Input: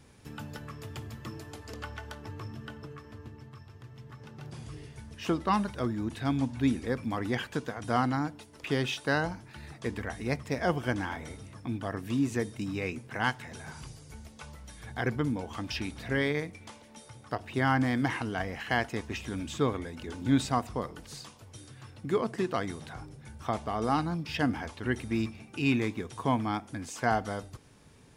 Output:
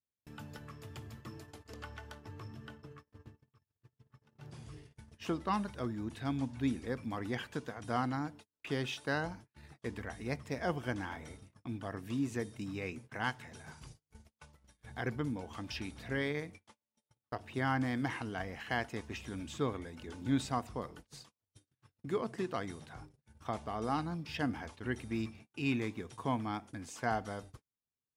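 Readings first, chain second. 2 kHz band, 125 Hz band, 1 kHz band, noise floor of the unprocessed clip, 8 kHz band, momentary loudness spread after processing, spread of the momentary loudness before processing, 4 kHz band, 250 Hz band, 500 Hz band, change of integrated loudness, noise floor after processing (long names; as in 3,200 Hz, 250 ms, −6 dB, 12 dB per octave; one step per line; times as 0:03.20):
−6.5 dB, −6.5 dB, −6.5 dB, −54 dBFS, −7.0 dB, 17 LU, 19 LU, −6.5 dB, −6.5 dB, −6.5 dB, −6.5 dB, below −85 dBFS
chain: noise gate −44 dBFS, range −39 dB
level −6.5 dB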